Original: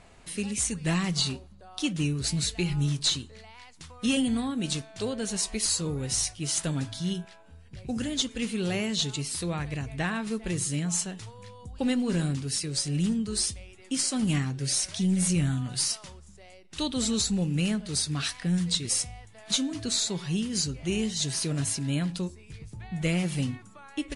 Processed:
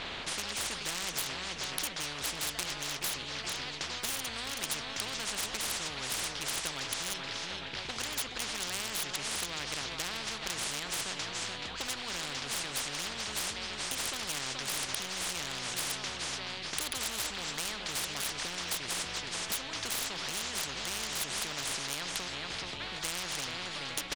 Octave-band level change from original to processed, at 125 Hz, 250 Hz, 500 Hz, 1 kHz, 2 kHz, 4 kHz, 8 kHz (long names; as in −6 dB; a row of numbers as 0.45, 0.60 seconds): −19.0, −19.0, −7.5, +2.5, +2.0, −2.0, −5.0 decibels